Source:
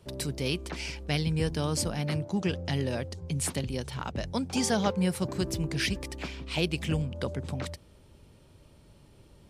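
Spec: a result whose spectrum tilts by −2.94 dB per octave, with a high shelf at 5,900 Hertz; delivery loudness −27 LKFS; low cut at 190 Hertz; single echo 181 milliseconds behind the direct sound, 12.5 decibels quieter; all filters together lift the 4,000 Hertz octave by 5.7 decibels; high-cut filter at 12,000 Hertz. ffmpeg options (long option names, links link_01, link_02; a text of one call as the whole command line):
ffmpeg -i in.wav -af "highpass=190,lowpass=12000,equalizer=frequency=4000:width_type=o:gain=4.5,highshelf=frequency=5900:gain=8,aecho=1:1:181:0.237,volume=3dB" out.wav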